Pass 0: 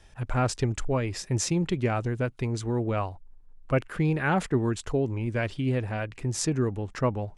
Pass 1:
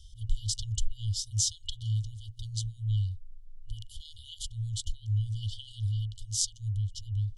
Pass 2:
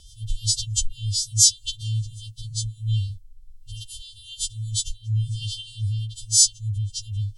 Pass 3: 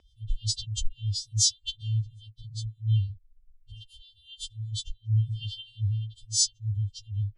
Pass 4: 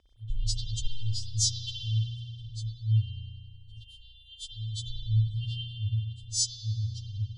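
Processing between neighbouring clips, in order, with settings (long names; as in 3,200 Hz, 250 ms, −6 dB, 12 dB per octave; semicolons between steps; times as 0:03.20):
brick-wall band-stop 110–2,900 Hz; high-shelf EQ 7,200 Hz −7 dB; level +5.5 dB
every partial snapped to a pitch grid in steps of 2 semitones; rotating-speaker cabinet horn 6 Hz, later 1.2 Hz, at 0:01.42; level +6 dB
spectral dynamics exaggerated over time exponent 1.5; high-frequency loss of the air 100 metres
convolution reverb RT60 1.9 s, pre-delay 55 ms, DRR −3.5 dB; level −4 dB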